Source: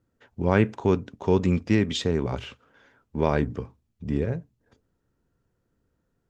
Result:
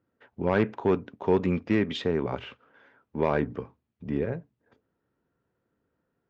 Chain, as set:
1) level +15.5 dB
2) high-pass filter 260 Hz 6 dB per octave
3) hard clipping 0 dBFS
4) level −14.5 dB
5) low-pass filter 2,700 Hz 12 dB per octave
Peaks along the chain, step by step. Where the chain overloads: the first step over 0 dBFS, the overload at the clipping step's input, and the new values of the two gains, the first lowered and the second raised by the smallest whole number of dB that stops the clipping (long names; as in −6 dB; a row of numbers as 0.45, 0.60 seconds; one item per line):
+10.0, +8.5, 0.0, −14.5, −14.0 dBFS
step 1, 8.5 dB
step 1 +6.5 dB, step 4 −5.5 dB